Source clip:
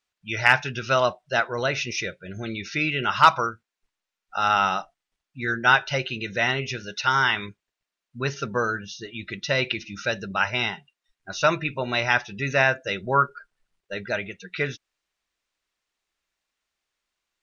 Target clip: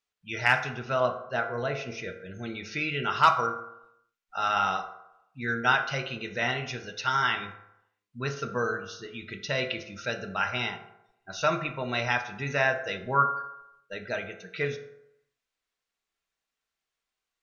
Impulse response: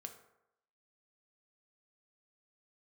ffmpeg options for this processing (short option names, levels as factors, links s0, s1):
-filter_complex "[0:a]asettb=1/sr,asplit=3[s0][s1][s2];[s0]atrim=end=0.714[s3];[s1]atrim=start=0.71:end=2.08,asetpts=PTS-STARTPTS,afade=t=in:d=0.004:c=qsin,afade=t=out:st=1.366:d=0.004:c=qsin,highshelf=f=2900:g=-12[s4];[s2]atrim=start=2.076[s5];[s3][s4]acrossfade=d=0.004:c1=hsin:c2=qsin[s6];[s6][s5]acrossfade=d=0.004:c1=qsin:c2=hsin[s7];[1:a]atrim=start_sample=2205[s8];[s7][s8]afir=irnorm=-1:irlink=0"